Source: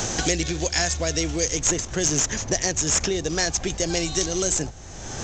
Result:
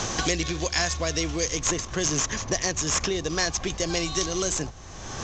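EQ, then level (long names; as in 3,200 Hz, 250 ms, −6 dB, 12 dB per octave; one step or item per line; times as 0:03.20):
high-frequency loss of the air 120 metres
parametric band 1,100 Hz +11.5 dB 0.21 octaves
high-shelf EQ 2,700 Hz +8 dB
−2.5 dB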